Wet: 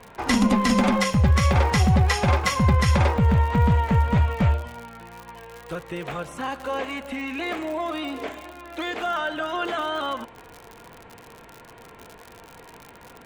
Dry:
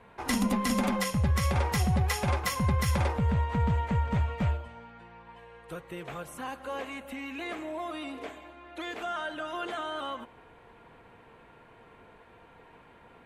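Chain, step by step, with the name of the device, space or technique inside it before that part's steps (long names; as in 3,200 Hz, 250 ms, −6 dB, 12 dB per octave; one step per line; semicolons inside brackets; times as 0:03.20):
lo-fi chain (low-pass filter 7,000 Hz 12 dB per octave; tape wow and flutter 29 cents; surface crackle 86 per second −39 dBFS)
level +8 dB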